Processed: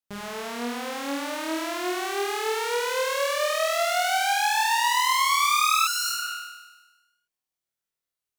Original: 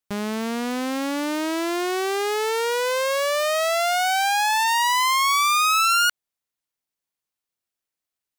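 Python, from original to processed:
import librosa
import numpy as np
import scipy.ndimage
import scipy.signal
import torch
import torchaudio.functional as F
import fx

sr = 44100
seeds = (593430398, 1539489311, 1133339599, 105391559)

y = fx.room_flutter(x, sr, wall_m=4.3, rt60_s=1.2)
y = fx.spec_repair(y, sr, seeds[0], start_s=5.89, length_s=0.39, low_hz=390.0, high_hz=4000.0, source='after')
y = fx.dynamic_eq(y, sr, hz=230.0, q=0.83, threshold_db=-33.0, ratio=4.0, max_db=-6)
y = F.gain(torch.from_numpy(y), -8.0).numpy()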